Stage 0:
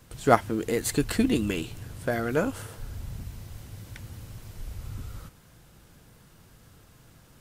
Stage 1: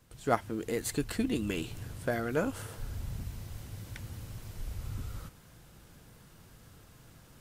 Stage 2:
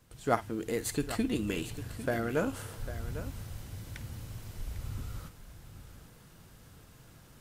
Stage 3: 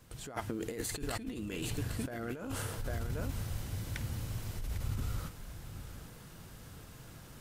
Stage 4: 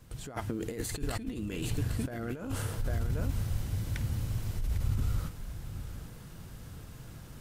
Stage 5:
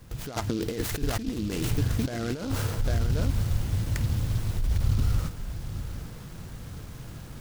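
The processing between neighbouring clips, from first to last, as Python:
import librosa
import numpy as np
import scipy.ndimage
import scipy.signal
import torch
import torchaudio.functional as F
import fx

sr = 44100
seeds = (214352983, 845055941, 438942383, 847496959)

y1 = fx.rider(x, sr, range_db=4, speed_s=0.5)
y1 = y1 * librosa.db_to_amplitude(-5.0)
y2 = fx.echo_multitap(y1, sr, ms=(52, 800), db=(-16.5, -13.0))
y3 = fx.over_compress(y2, sr, threshold_db=-38.0, ratio=-1.0)
y3 = y3 * librosa.db_to_amplitude(1.0)
y4 = fx.low_shelf(y3, sr, hz=220.0, db=7.0)
y5 = fx.noise_mod_delay(y4, sr, seeds[0], noise_hz=3900.0, depth_ms=0.064)
y5 = y5 * librosa.db_to_amplitude(6.0)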